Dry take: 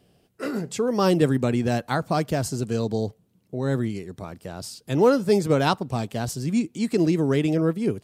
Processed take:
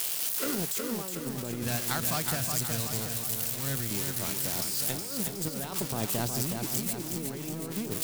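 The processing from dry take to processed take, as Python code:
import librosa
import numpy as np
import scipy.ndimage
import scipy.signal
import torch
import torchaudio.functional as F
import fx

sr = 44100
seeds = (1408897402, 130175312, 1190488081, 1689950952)

y = x + 0.5 * 10.0 ** (-19.0 / 20.0) * np.diff(np.sign(x), prepend=np.sign(x[:1]))
y = fx.peak_eq(y, sr, hz=390.0, db=-13.5, octaves=2.2, at=(1.63, 3.91))
y = fx.over_compress(y, sr, threshold_db=-27.0, ratio=-1.0)
y = fx.power_curve(y, sr, exponent=1.4)
y = fx.echo_feedback(y, sr, ms=367, feedback_pct=56, wet_db=-5.5)
y = y * 10.0 ** (-2.0 / 20.0)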